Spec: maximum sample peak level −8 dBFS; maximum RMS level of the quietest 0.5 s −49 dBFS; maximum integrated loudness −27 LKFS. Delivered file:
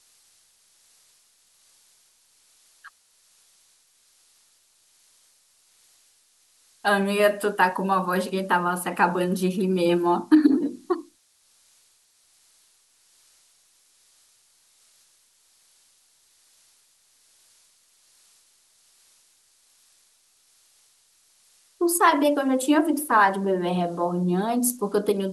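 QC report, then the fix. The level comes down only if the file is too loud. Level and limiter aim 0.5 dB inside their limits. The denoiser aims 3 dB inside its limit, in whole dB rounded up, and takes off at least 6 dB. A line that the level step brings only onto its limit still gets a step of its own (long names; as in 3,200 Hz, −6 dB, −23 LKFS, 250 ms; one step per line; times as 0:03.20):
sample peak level −5.5 dBFS: out of spec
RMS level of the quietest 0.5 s −63 dBFS: in spec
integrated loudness −22.5 LKFS: out of spec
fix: level −5 dB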